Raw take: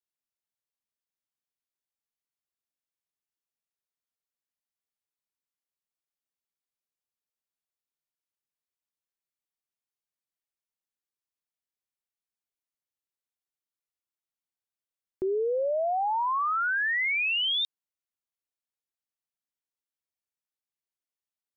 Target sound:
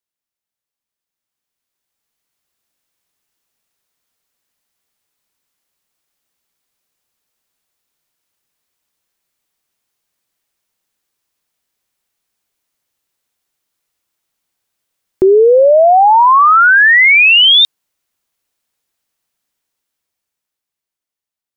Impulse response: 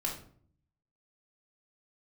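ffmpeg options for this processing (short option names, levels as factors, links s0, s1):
-af "dynaudnorm=f=290:g=13:m=5.31,volume=1.88"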